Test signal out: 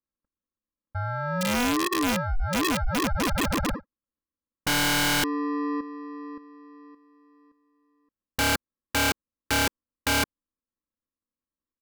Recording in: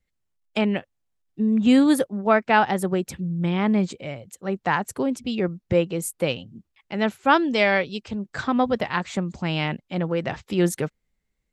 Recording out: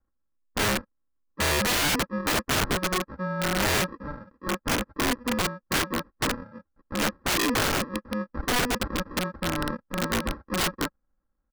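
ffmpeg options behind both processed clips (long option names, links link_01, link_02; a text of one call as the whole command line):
ffmpeg -i in.wav -af "aresample=11025,acrusher=samples=15:mix=1:aa=0.000001,aresample=44100,highshelf=frequency=2100:width_type=q:width=3:gain=-12.5,aecho=1:1:3.7:0.6,aeval=exprs='(mod(6.31*val(0)+1,2)-1)/6.31':channel_layout=same,volume=-3dB" out.wav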